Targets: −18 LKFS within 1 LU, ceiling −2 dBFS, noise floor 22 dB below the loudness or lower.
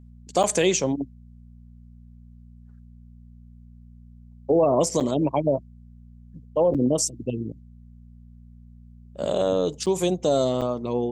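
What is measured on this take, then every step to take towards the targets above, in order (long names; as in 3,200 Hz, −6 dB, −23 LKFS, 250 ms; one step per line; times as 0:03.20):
number of dropouts 5; longest dropout 7.2 ms; mains hum 60 Hz; hum harmonics up to 240 Hz; level of the hum −44 dBFS; integrated loudness −23.5 LKFS; sample peak −9.0 dBFS; target loudness −18.0 LKFS
→ repair the gap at 0:00.43/0:05.00/0:06.74/0:09.86/0:10.61, 7.2 ms
hum removal 60 Hz, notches 4
level +5.5 dB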